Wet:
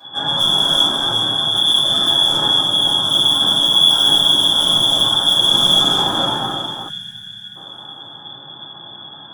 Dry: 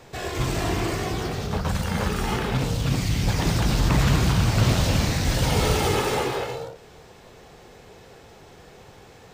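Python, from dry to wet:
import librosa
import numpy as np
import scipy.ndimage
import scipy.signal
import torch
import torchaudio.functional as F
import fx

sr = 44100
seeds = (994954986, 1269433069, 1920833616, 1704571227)

p1 = fx.self_delay(x, sr, depth_ms=0.09)
p2 = scipy.signal.sosfilt(scipy.signal.cheby2(4, 40, [180.0, 1300.0], 'bandstop', fs=sr, output='sos'), p1)
p3 = fx.freq_invert(p2, sr, carrier_hz=3400)
p4 = scipy.signal.sosfilt(scipy.signal.butter(4, 120.0, 'highpass', fs=sr, output='sos'), p3)
p5 = fx.peak_eq(p4, sr, hz=460.0, db=-9.5, octaves=0.27)
p6 = fx.rider(p5, sr, range_db=5, speed_s=2.0)
p7 = p5 + (p6 * 10.0 ** (-2.0 / 20.0))
p8 = 10.0 ** (-20.0 / 20.0) * np.tanh(p7 / 10.0 ** (-20.0 / 20.0))
p9 = p8 + fx.echo_feedback(p8, sr, ms=365, feedback_pct=51, wet_db=-9.5, dry=0)
p10 = fx.room_shoebox(p9, sr, seeds[0], volume_m3=64.0, walls='mixed', distance_m=2.1)
p11 = fx.spec_box(p10, sr, start_s=6.89, length_s=0.67, low_hz=220.0, high_hz=1400.0, gain_db=-22)
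y = p11 * 10.0 ** (1.5 / 20.0)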